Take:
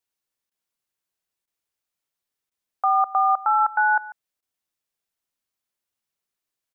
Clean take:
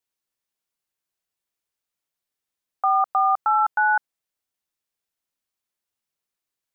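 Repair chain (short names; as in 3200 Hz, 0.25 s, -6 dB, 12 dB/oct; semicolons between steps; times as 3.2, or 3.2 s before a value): interpolate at 0.5/1.46/2.5/4.41, 13 ms; inverse comb 0.143 s -18 dB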